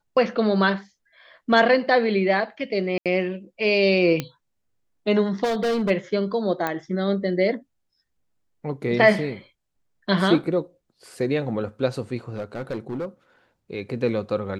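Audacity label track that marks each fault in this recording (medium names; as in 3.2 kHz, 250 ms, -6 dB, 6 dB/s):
2.980000	3.060000	dropout 77 ms
4.200000	4.200000	pop -11 dBFS
5.430000	5.910000	clipped -20 dBFS
6.670000	6.670000	pop -11 dBFS
12.290000	13.050000	clipped -24.5 dBFS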